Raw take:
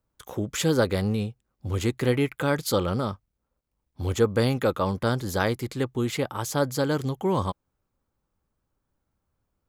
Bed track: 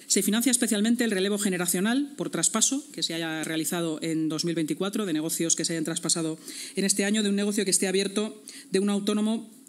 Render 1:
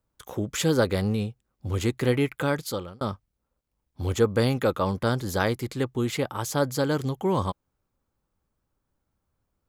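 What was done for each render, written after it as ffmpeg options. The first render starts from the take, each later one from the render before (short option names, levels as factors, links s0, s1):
-filter_complex "[0:a]asplit=2[s0][s1];[s0]atrim=end=3.01,asetpts=PTS-STARTPTS,afade=t=out:st=2.43:d=0.58[s2];[s1]atrim=start=3.01,asetpts=PTS-STARTPTS,afade=t=in:d=0.004:c=hsin[s3];[s2][s3]concat=n=2:v=0:a=1"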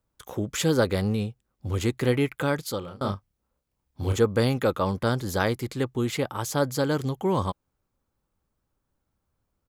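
-filter_complex "[0:a]asplit=3[s0][s1][s2];[s0]afade=t=out:st=2.82:d=0.02[s3];[s1]asplit=2[s4][s5];[s5]adelay=30,volume=0.631[s6];[s4][s6]amix=inputs=2:normalize=0,afade=t=in:st=2.82:d=0.02,afade=t=out:st=4.16:d=0.02[s7];[s2]afade=t=in:st=4.16:d=0.02[s8];[s3][s7][s8]amix=inputs=3:normalize=0"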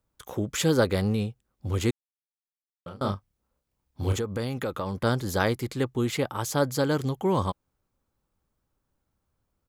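-filter_complex "[0:a]asettb=1/sr,asplit=3[s0][s1][s2];[s0]atrim=end=4.154[s3];[s1]atrim=start=4.15:end=5,asetpts=PTS-STARTPTS,afade=t=in:d=0.004:c=qsin,afade=t=out:st=0.846:d=0.004:c=qsin,acompressor=threshold=0.0447:ratio=4:attack=3.2:release=140:knee=1:detection=peak[s4];[s2]atrim=start=4.996[s5];[s3][s4]acrossfade=d=0.004:c1=hsin:c2=qsin[s6];[s6][s5]acrossfade=d=0.004:c1=qsin:c2=hsin,asplit=3[s7][s8][s9];[s7]atrim=end=1.91,asetpts=PTS-STARTPTS,afade=t=out:st=1.906:d=0.004:c=hsin[s10];[s8]atrim=start=1.91:end=2.86,asetpts=PTS-STARTPTS,volume=0[s11];[s9]atrim=start=2.86,asetpts=PTS-STARTPTS,afade=t=in:d=0.004:c=hsin[s12];[s10][s11][s12]concat=n=3:v=0:a=1"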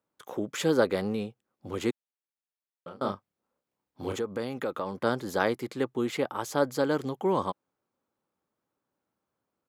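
-af "highpass=240,highshelf=f=3200:g=-8.5"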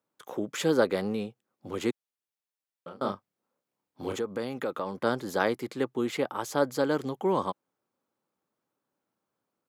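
-af "highpass=110"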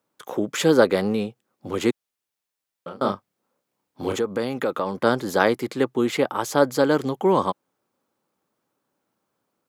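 -af "volume=2.37"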